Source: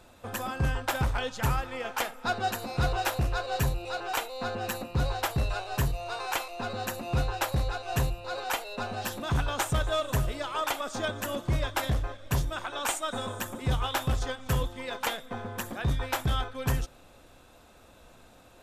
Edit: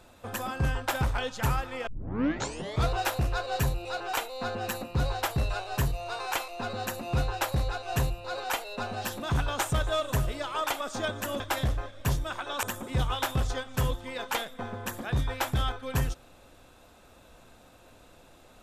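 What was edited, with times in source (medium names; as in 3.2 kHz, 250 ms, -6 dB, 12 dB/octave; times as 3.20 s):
1.87 s: tape start 1.03 s
11.40–11.66 s: delete
12.89–13.35 s: delete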